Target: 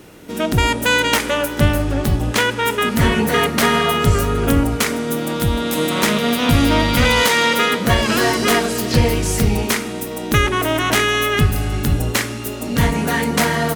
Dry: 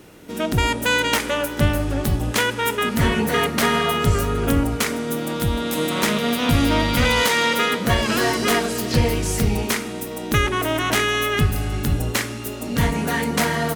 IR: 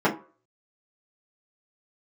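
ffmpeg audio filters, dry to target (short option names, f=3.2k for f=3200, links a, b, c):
-filter_complex "[0:a]asettb=1/sr,asplit=3[a][b][c];[a]atrim=end=1.824[d];[b]atrim=start=1.82:end=2.71,asetpts=PTS-STARTPTS,afade=t=in:d=0.004:c=qsin,afade=t=out:st=0.886:d=0.004:c=qsin,equalizer=f=13k:w=0.48:g=-4[e];[c]atrim=start=2.706[f];[d][e]acrossfade=d=0.004:c1=hsin:c2=qsin[g];[g][f]acrossfade=d=0.004:c1=qsin:c2=hsin,volume=3.5dB"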